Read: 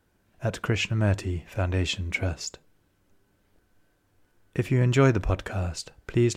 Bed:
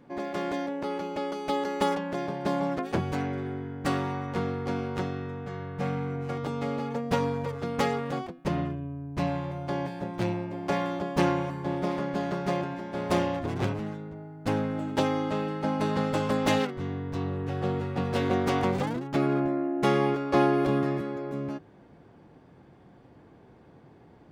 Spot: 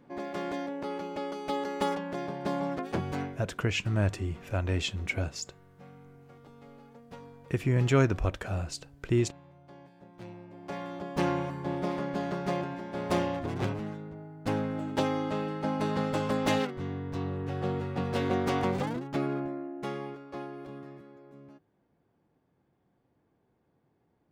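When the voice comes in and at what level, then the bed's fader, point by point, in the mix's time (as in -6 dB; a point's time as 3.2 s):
2.95 s, -3.5 dB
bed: 3.23 s -3.5 dB
3.48 s -21 dB
9.9 s -21 dB
11.36 s -2.5 dB
18.98 s -2.5 dB
20.47 s -18.5 dB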